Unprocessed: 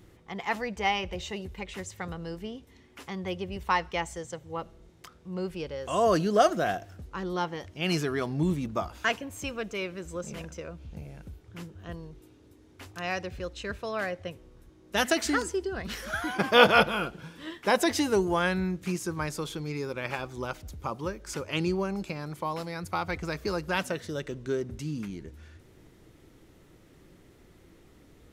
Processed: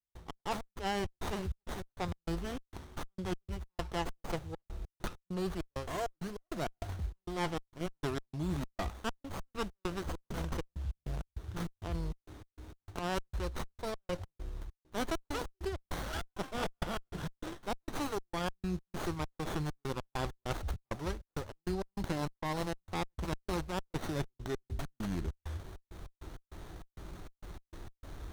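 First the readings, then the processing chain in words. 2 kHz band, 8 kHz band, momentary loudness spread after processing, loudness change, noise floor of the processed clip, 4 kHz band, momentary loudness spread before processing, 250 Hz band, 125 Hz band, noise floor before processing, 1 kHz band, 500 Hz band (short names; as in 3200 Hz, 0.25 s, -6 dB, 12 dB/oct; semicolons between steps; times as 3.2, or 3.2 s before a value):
-13.5 dB, -9.0 dB, 13 LU, -9.5 dB, under -85 dBFS, -11.0 dB, 17 LU, -7.0 dB, -3.0 dB, -57 dBFS, -9.5 dB, -10.5 dB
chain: graphic EQ 125/250/500/1000/2000/4000/8000 Hz -9/-12/-11/-4/-12/+5/+4 dB; reverse; compressor 8:1, threshold -48 dBFS, peak gain reduction 26 dB; reverse; soft clip -36 dBFS, distortion -28 dB; step gate ".x.x.xx.xx" 99 bpm -60 dB; running maximum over 17 samples; gain +17 dB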